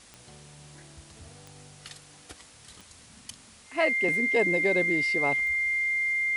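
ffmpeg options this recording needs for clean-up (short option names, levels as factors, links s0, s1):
-af "adeclick=t=4,bandreject=f=2100:w=30,afwtdn=0.0028"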